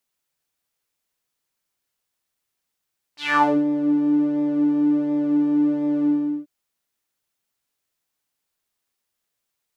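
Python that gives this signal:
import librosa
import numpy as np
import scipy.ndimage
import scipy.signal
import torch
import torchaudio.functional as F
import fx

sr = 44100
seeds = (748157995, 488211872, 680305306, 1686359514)

y = fx.sub_patch_pwm(sr, seeds[0], note=62, wave2='saw', interval_st=0, detune_cents=24, level2_db=-9.0, sub_db=-10, noise_db=-30.0, kind='bandpass', cutoff_hz=290.0, q=4.3, env_oct=4.0, env_decay_s=0.39, env_sustain_pct=5, attack_ms=190.0, decay_s=0.28, sustain_db=-12.0, release_s=0.4, note_s=2.89, lfo_hz=1.4, width_pct=39, width_swing_pct=19)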